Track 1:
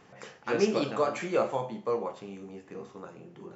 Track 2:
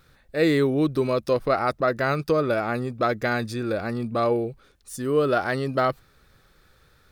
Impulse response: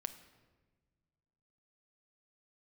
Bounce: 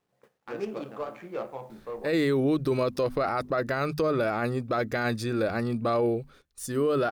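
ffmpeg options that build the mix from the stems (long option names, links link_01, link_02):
-filter_complex "[0:a]highshelf=frequency=5300:gain=6,adynamicsmooth=sensitivity=2:basefreq=1200,acrusher=bits=9:mix=0:aa=0.000001,volume=-7.5dB,afade=type=out:start_time=2.15:duration=0.33:silence=0.316228[link_01];[1:a]adelay=1700,volume=0dB[link_02];[link_01][link_02]amix=inputs=2:normalize=0,bandreject=frequency=50:width_type=h:width=6,bandreject=frequency=100:width_type=h:width=6,bandreject=frequency=150:width_type=h:width=6,bandreject=frequency=200:width_type=h:width=6,bandreject=frequency=250:width_type=h:width=6,agate=range=-13dB:threshold=-53dB:ratio=16:detection=peak,alimiter=limit=-18dB:level=0:latency=1:release=17"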